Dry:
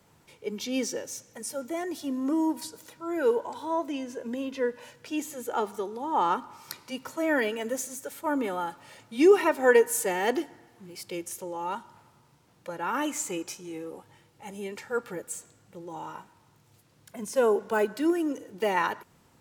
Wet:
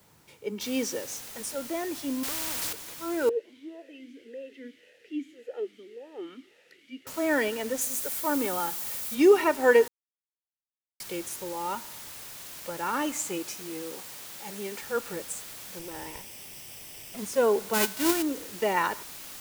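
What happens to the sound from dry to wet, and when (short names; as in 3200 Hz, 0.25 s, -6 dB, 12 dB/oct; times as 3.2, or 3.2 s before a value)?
0.61 noise floor step -65 dB -43 dB
2.23–2.73 spectral compressor 4:1
3.29–7.07 vowel sweep e-i 1.8 Hz
7.81–9.15 high shelf 7400 Hz +11 dB
9.88–11 mute
13.12–14.81 HPF 84 Hz -> 170 Hz
15.79–17.18 minimum comb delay 0.37 ms
17.73–18.21 spectral whitening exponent 0.3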